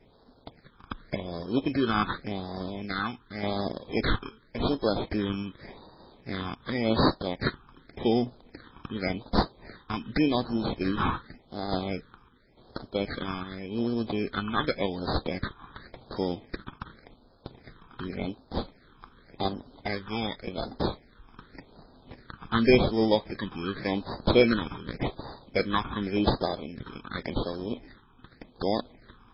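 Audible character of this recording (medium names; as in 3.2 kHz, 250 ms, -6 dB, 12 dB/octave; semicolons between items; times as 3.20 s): aliases and images of a low sample rate 2.8 kHz, jitter 0%; phasing stages 8, 0.88 Hz, lowest notch 570–2400 Hz; random-step tremolo; MP3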